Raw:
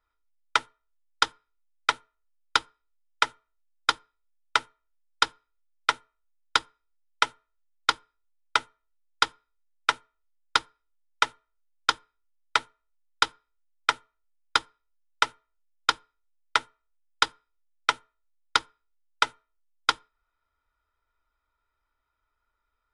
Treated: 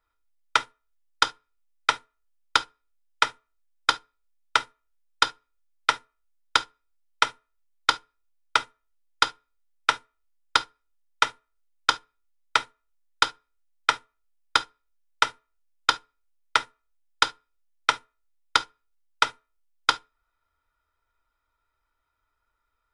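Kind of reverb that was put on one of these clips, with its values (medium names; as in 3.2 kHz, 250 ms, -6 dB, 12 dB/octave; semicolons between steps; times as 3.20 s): gated-style reverb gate 90 ms falling, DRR 11.5 dB; trim +1.5 dB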